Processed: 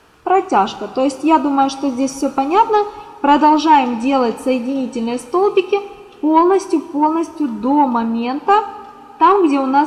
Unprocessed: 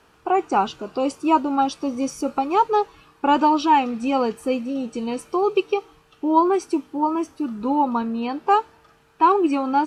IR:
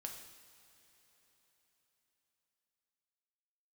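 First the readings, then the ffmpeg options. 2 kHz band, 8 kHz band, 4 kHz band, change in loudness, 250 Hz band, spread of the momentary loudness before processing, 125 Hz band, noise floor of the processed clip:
+6.5 dB, +6.5 dB, +6.0 dB, +6.0 dB, +6.5 dB, 9 LU, no reading, -40 dBFS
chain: -filter_complex "[0:a]asplit=2[s0][s1];[1:a]atrim=start_sample=2205[s2];[s1][s2]afir=irnorm=-1:irlink=0,volume=0.75[s3];[s0][s3]amix=inputs=2:normalize=0,asoftclip=type=tanh:threshold=0.668,volume=1.5"

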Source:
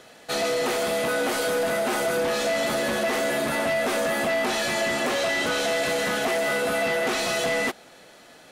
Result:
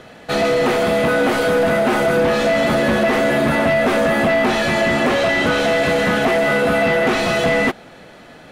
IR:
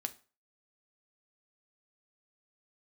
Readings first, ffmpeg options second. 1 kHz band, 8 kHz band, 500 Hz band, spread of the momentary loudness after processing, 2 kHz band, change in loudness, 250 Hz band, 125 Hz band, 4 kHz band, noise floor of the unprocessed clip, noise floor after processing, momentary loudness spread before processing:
+8.0 dB, -2.0 dB, +8.5 dB, 1 LU, +7.5 dB, +8.0 dB, +12.0 dB, +15.0 dB, +3.5 dB, -50 dBFS, -42 dBFS, 1 LU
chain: -af "bass=f=250:g=8,treble=f=4000:g=-11,volume=2.51"

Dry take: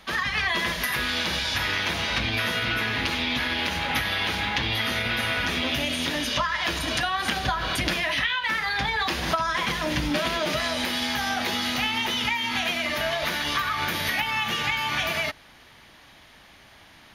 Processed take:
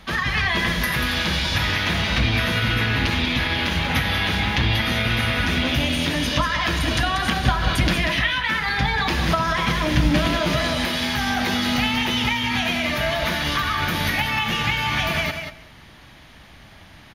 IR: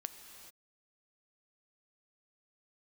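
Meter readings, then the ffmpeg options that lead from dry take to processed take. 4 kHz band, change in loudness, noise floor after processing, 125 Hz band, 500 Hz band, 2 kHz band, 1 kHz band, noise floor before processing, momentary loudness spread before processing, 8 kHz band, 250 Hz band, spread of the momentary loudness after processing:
+2.5 dB, +4.0 dB, -46 dBFS, +11.5 dB, +4.0 dB, +3.0 dB, +3.0 dB, -52 dBFS, 1 LU, +1.5 dB, +7.5 dB, 2 LU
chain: -filter_complex "[0:a]bass=f=250:g=9,treble=f=4000:g=-2,aecho=1:1:188:0.422,asplit=2[s0][s1];[1:a]atrim=start_sample=2205,asetrate=88200,aresample=44100[s2];[s1][s2]afir=irnorm=-1:irlink=0,volume=2[s3];[s0][s3]amix=inputs=2:normalize=0,volume=0.794"

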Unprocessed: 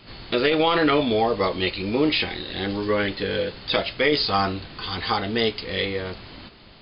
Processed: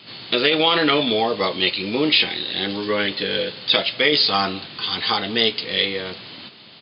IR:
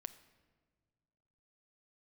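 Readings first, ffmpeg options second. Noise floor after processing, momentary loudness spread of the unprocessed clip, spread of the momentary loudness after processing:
-45 dBFS, 9 LU, 9 LU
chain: -filter_complex "[0:a]highpass=f=120:w=0.5412,highpass=f=120:w=1.3066,equalizer=f=3500:w=1.1:g=9,asplit=2[s0][s1];[s1]adelay=192.4,volume=0.0631,highshelf=f=4000:g=-4.33[s2];[s0][s2]amix=inputs=2:normalize=0"

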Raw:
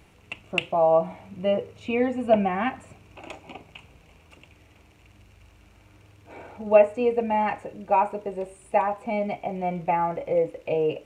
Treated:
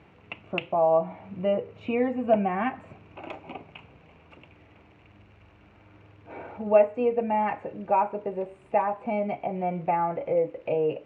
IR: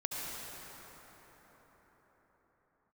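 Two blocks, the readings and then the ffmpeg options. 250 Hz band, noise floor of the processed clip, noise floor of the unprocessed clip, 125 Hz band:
-1.0 dB, -56 dBFS, -56 dBFS, -1.5 dB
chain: -filter_complex "[0:a]asplit=2[s0][s1];[s1]acompressor=threshold=0.0224:ratio=6,volume=1.06[s2];[s0][s2]amix=inputs=2:normalize=0,highpass=100,lowpass=2300,volume=0.668"

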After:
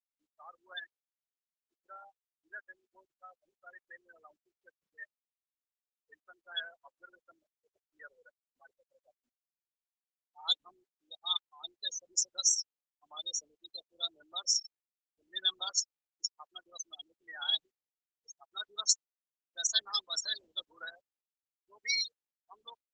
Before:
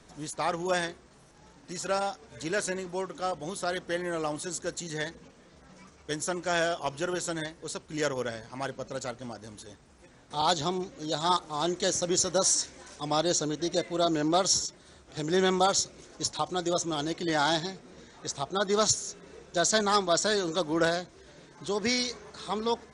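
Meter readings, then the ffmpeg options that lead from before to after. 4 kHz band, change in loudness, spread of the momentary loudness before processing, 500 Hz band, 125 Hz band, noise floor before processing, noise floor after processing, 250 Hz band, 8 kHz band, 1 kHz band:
-2.0 dB, -4.5 dB, 13 LU, -31.5 dB, under -40 dB, -57 dBFS, under -85 dBFS, under -40 dB, -4.5 dB, -21.0 dB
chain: -af "afftfilt=real='re*gte(hypot(re,im),0.126)':imag='im*gte(hypot(re,im),0.126)':win_size=1024:overlap=0.75,highpass=f=3000:t=q:w=4.1,volume=0.891" -ar 48000 -c:a libopus -b:a 10k

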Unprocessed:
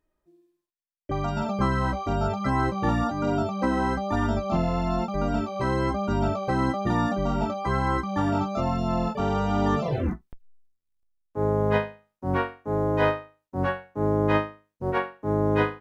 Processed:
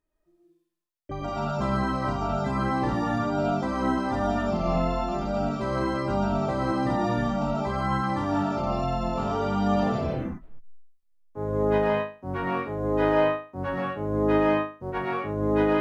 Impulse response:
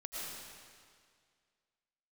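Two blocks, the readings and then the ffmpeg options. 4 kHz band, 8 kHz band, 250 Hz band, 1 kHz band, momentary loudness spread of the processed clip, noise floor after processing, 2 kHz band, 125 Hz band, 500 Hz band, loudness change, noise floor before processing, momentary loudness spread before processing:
0.0 dB, no reading, 0.0 dB, 0.0 dB, 8 LU, -69 dBFS, -1.0 dB, -2.5 dB, +1.0 dB, -0.5 dB, -81 dBFS, 5 LU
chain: -filter_complex "[1:a]atrim=start_sample=2205,afade=t=out:st=0.31:d=0.01,atrim=end_sample=14112[s0];[0:a][s0]afir=irnorm=-1:irlink=0"

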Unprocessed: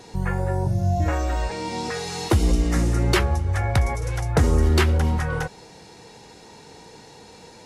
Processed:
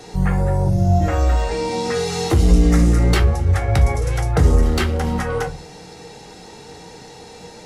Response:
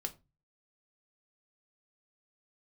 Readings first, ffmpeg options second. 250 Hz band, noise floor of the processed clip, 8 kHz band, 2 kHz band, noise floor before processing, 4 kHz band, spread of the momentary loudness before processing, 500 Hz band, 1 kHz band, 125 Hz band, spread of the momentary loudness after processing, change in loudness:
+5.5 dB, -40 dBFS, +3.0 dB, +1.0 dB, -46 dBFS, +2.0 dB, 9 LU, +5.0 dB, +3.0 dB, +4.5 dB, 8 LU, +4.5 dB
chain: -filter_complex "[0:a]asoftclip=type=tanh:threshold=0.237,acrossover=split=260[s0][s1];[s1]acompressor=threshold=0.0447:ratio=2[s2];[s0][s2]amix=inputs=2:normalize=0[s3];[1:a]atrim=start_sample=2205[s4];[s3][s4]afir=irnorm=-1:irlink=0,volume=2.11"

